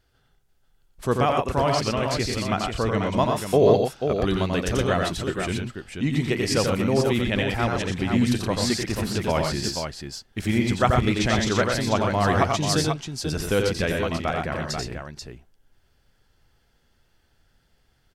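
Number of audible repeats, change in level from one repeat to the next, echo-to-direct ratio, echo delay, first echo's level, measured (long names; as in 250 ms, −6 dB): 3, repeats not evenly spaced, −1.0 dB, 88 ms, −4.5 dB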